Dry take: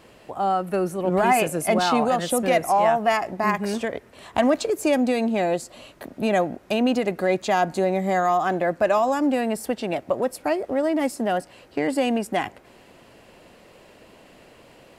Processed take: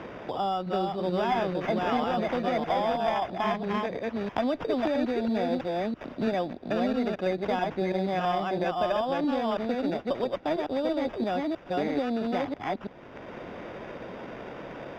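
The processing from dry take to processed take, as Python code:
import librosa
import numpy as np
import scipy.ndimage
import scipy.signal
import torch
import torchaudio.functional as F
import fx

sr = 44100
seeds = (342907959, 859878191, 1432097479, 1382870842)

y = fx.reverse_delay(x, sr, ms=330, wet_db=-2)
y = fx.sample_hold(y, sr, seeds[0], rate_hz=4200.0, jitter_pct=0)
y = fx.cheby_harmonics(y, sr, harmonics=(2,), levels_db=(-18,), full_scale_db=-4.5)
y = fx.air_absorb(y, sr, metres=280.0)
y = fx.band_squash(y, sr, depth_pct=70)
y = y * 10.0 ** (-7.0 / 20.0)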